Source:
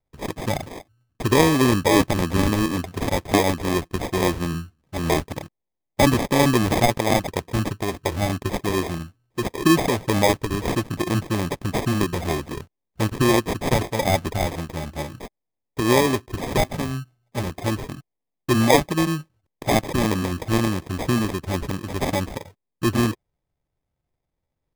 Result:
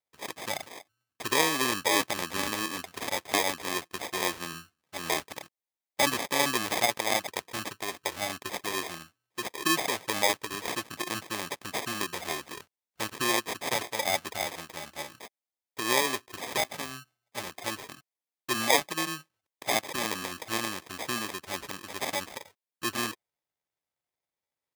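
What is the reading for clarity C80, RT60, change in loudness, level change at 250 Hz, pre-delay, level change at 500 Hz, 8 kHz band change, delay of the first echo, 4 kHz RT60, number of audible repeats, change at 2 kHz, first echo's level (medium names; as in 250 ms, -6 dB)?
no reverb, no reverb, -7.5 dB, -16.0 dB, no reverb, -11.0 dB, -1.0 dB, no echo, no reverb, no echo, -3.0 dB, no echo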